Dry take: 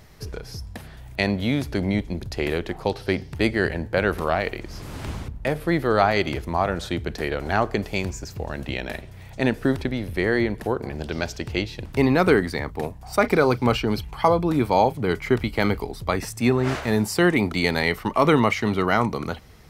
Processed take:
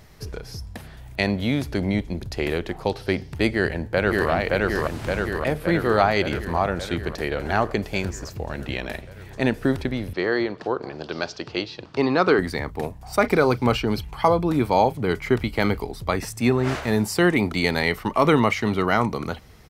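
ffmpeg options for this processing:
ffmpeg -i in.wav -filter_complex "[0:a]asplit=2[link_01][link_02];[link_02]afade=type=in:start_time=3.49:duration=0.01,afade=type=out:start_time=4.3:duration=0.01,aecho=0:1:570|1140|1710|2280|2850|3420|3990|4560|5130|5700|6270|6840:0.891251|0.623876|0.436713|0.305699|0.213989|0.149793|0.104855|0.0733983|0.0513788|0.0359652|0.0251756|0.0176229[link_03];[link_01][link_03]amix=inputs=2:normalize=0,asettb=1/sr,asplit=3[link_04][link_05][link_06];[link_04]atrim=end=10.134[link_07];[link_05]atrim=start=10.13:end=12.39,asetpts=PTS-STARTPTS,afade=type=in:duration=0.004:curve=qsin,afade=type=out:start_time=2.256:duration=0.004:curve=qsin,highpass=190,equalizer=frequency=220:width_type=q:width=4:gain=-6,equalizer=frequency=1200:width_type=q:width=4:gain=5,equalizer=frequency=2100:width_type=q:width=4:gain=-5,equalizer=frequency=4500:width_type=q:width=4:gain=4,lowpass=frequency=5800:width=0.5412,lowpass=frequency=5800:width=1.3066[link_08];[link_06]atrim=start=12.386[link_09];[link_07][link_08]acrossfade=duration=0.004:curve1=hsin:curve2=qsin[link_10];[link_10][link_09]acrossfade=duration=0.004:curve1=qsin:curve2=hsin" out.wav

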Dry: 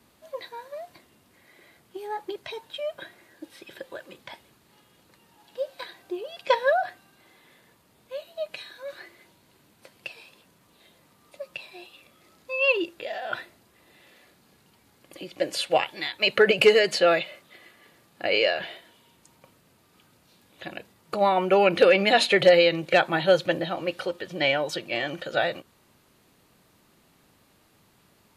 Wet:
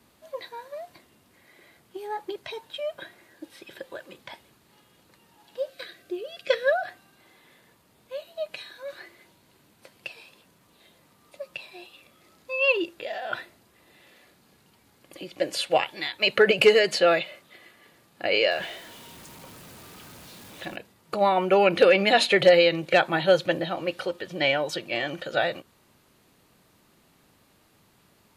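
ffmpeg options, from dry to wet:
ffmpeg -i in.wav -filter_complex "[0:a]asettb=1/sr,asplit=3[link_01][link_02][link_03];[link_01]atrim=end=5.694[link_04];[link_02]atrim=start=5.69:end=6.88,asetpts=PTS-STARTPTS,afade=type=in:duration=0.004:curve=qsin,afade=type=out:start_time=1.186:duration=0.004:curve=qsin,asuperstop=centerf=900:order=4:qfactor=2[link_05];[link_03]atrim=start=6.876[link_06];[link_04][link_05]acrossfade=duration=0.004:curve1=hsin:curve2=qsin[link_07];[link_07][link_06]acrossfade=duration=0.004:curve1=qsin:curve2=hsin,asettb=1/sr,asplit=3[link_08][link_09][link_10];[link_08]atrim=end=18.514[link_11];[link_09]atrim=start=18.51:end=20.76,asetpts=PTS-STARTPTS,afade=type=in:duration=0.004:curve=qsin,afade=type=out:start_time=2.246:duration=0.004:curve=qsin,aeval=exprs='val(0)+0.5*0.00794*sgn(val(0))':channel_layout=same[link_12];[link_10]atrim=start=20.756[link_13];[link_11][link_12]acrossfade=duration=0.004:curve1=hsin:curve2=qsin[link_14];[link_14][link_13]acrossfade=duration=0.004:curve1=qsin:curve2=hsin" out.wav

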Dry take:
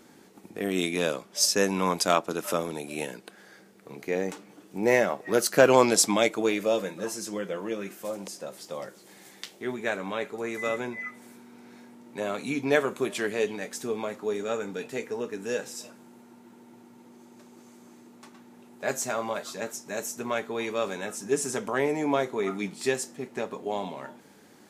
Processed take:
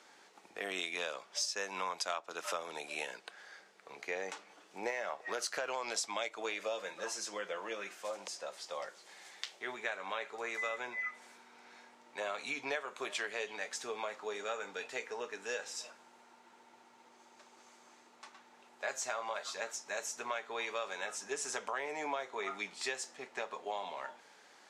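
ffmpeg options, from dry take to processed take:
ffmpeg -i in.wav -filter_complex "[0:a]asettb=1/sr,asplit=3[link_01][link_02][link_03];[link_01]atrim=end=4.904[link_04];[link_02]atrim=start=4.9:end=5.98,asetpts=PTS-STARTPTS,afade=type=in:duration=0.004:curve=qsin,afade=type=out:start_time=1.076:duration=0.004:curve=qsin,acompressor=threshold=-21dB:ratio=3:attack=3.2:release=140:knee=1:detection=peak[link_05];[link_03]atrim=start=5.976[link_06];[link_04][link_05]acrossfade=duration=0.004:curve1=hsin:curve2=qsin[link_07];[link_07][link_06]acrossfade=duration=0.004:curve1=qsin:curve2=hsin,acrossover=split=570 7800:gain=0.0708 1 0.0891[link_08][link_09][link_10];[link_08][link_09][link_10]amix=inputs=3:normalize=0,acompressor=threshold=-34dB:ratio=6" out.wav

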